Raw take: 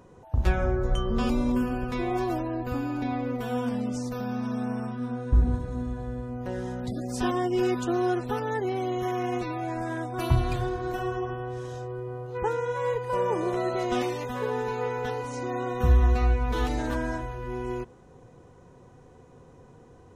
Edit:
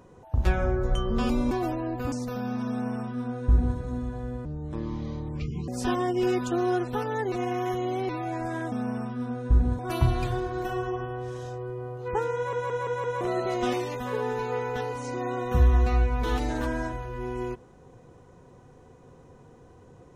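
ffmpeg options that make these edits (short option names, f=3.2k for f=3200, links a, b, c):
-filter_complex "[0:a]asplit=14[a][b][c][d][e][f][g][h][i][j][k][l][m][n];[a]atrim=end=1.512[o];[b]atrim=start=2.178:end=2.792[p];[c]atrim=start=3.958:end=6.294[q];[d]atrim=start=6.29:end=7.04,asetpts=PTS-STARTPTS,asetrate=26901,aresample=44100,atrim=end_sample=54221,asetpts=PTS-STARTPTS[r];[e]atrim=start=7.036:end=8.682[s];[f]atrim=start=8.678:end=9.452,asetpts=PTS-STARTPTS,areverse[t];[g]atrim=start=9.448:end=10.082[u];[h]atrim=start=4.538:end=5.612[v];[i]atrim=start=10.078:end=12.822[w];[j]atrim=start=12.648:end=12.822[x];[k]atrim=start=12.648:end=12.822[y];[l]atrim=start=12.648:end=12.822[z];[m]atrim=start=12.648:end=12.822[aa];[n]atrim=start=13.498[ab];[o][p]acrossfade=d=0.004:c1=hsin:c2=hsin[ac];[ac][q]acrossfade=d=0.004:c1=hsin:c2=hsin[ad];[ad][r]acrossfade=d=0.004:c1=hsin:c2=hsin[ae];[ae][s]acrossfade=d=0.004:c1=hsin:c2=hsin[af];[af][t]acrossfade=d=0.004:c1=hsin:c2=hsin[ag];[ag][u]acrossfade=d=0.004:c1=hsin:c2=hsin[ah];[ah][v]acrossfade=d=0.004:c1=hsin:c2=hsin[ai];[ai][w]acrossfade=d=0.004:c1=hsin:c2=hsin[aj];[aj][x]acrossfade=d=0.004:c1=hsin:c2=hsin[ak];[ak][y]acrossfade=d=0.004:c1=hsin:c2=hsin[al];[al][z]acrossfade=d=0.004:c1=hsin:c2=hsin[am];[am][aa]acrossfade=d=0.004:c1=hsin:c2=hsin[an];[an][ab]acrossfade=d=0.004:c1=hsin:c2=hsin"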